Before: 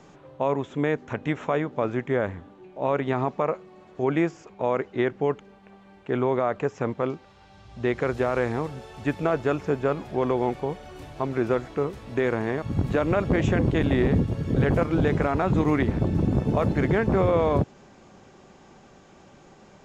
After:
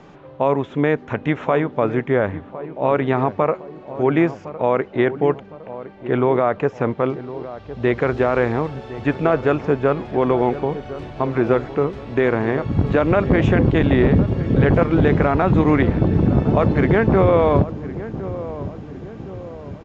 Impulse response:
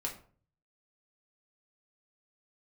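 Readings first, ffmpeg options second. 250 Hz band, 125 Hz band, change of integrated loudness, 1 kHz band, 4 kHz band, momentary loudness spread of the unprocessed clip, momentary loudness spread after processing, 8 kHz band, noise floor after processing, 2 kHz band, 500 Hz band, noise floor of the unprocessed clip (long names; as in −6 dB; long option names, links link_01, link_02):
+6.5 dB, +6.5 dB, +6.5 dB, +6.5 dB, +4.5 dB, 9 LU, 15 LU, can't be measured, −41 dBFS, +6.5 dB, +6.5 dB, −53 dBFS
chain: -filter_complex "[0:a]lowpass=3800,asplit=2[link_01][link_02];[link_02]adelay=1060,lowpass=frequency=980:poles=1,volume=-13dB,asplit=2[link_03][link_04];[link_04]adelay=1060,lowpass=frequency=980:poles=1,volume=0.55,asplit=2[link_05][link_06];[link_06]adelay=1060,lowpass=frequency=980:poles=1,volume=0.55,asplit=2[link_07][link_08];[link_08]adelay=1060,lowpass=frequency=980:poles=1,volume=0.55,asplit=2[link_09][link_10];[link_10]adelay=1060,lowpass=frequency=980:poles=1,volume=0.55,asplit=2[link_11][link_12];[link_12]adelay=1060,lowpass=frequency=980:poles=1,volume=0.55[link_13];[link_03][link_05][link_07][link_09][link_11][link_13]amix=inputs=6:normalize=0[link_14];[link_01][link_14]amix=inputs=2:normalize=0,volume=6.5dB"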